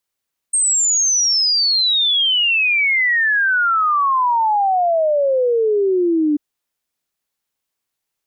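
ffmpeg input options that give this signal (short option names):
-f lavfi -i "aevalsrc='0.224*clip(min(t,5.84-t)/0.01,0,1)*sin(2*PI*8600*5.84/log(290/8600)*(exp(log(290/8600)*t/5.84)-1))':d=5.84:s=44100"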